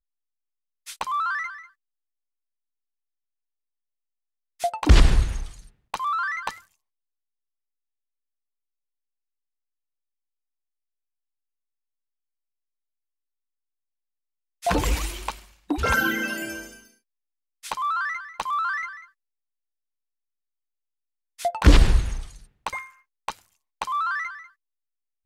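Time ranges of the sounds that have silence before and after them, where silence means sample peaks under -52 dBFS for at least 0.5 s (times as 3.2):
0.86–1.71
4.6–6.73
14.62–16.94
17.63–19.1
21.38–24.52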